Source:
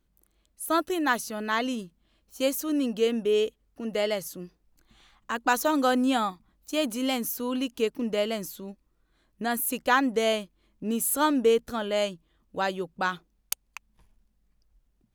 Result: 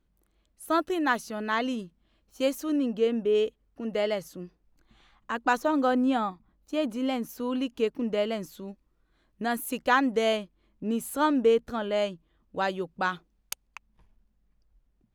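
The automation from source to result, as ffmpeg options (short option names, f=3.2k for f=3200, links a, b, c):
-af "asetnsamples=n=441:p=0,asendcmd='2.76 lowpass f 1600;3.35 lowpass f 2700;5.57 lowpass f 1400;7.29 lowpass f 2500;8.52 lowpass f 4300;10.37 lowpass f 2500;12.58 lowpass f 4600;13.67 lowpass f 2500',lowpass=f=3.4k:p=1"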